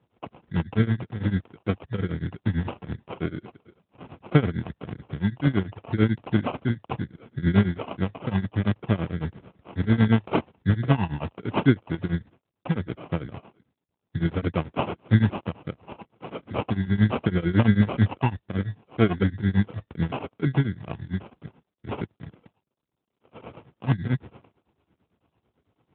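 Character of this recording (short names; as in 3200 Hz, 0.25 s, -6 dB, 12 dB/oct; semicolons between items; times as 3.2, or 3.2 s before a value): phasing stages 6, 0.7 Hz, lowest notch 570–1500 Hz; tremolo triangle 9 Hz, depth 95%; aliases and images of a low sample rate 1800 Hz, jitter 0%; AMR-NB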